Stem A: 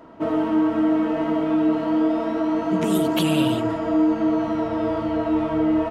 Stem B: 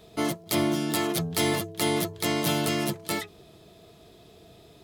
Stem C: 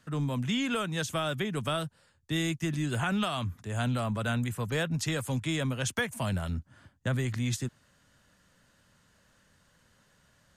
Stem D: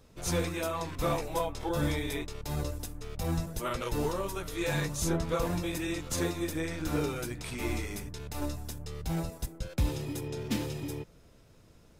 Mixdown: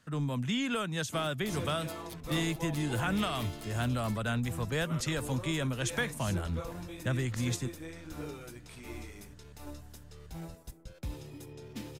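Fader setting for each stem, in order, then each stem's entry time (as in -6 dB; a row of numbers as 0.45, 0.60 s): off, -18.5 dB, -2.0 dB, -10.5 dB; off, 0.95 s, 0.00 s, 1.25 s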